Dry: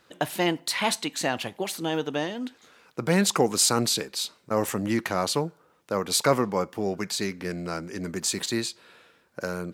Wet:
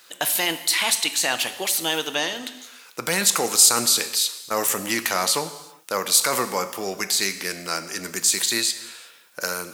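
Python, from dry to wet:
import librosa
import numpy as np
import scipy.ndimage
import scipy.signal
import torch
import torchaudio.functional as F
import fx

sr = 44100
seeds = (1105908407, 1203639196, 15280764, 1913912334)

p1 = fx.tilt_eq(x, sr, slope=4.5)
p2 = fx.over_compress(p1, sr, threshold_db=-26.0, ratio=-1.0)
p3 = p1 + F.gain(torch.from_numpy(p2), 1.0).numpy()
p4 = fx.rev_gated(p3, sr, seeds[0], gate_ms=410, shape='falling', drr_db=10.0)
y = F.gain(torch.from_numpy(p4), -5.5).numpy()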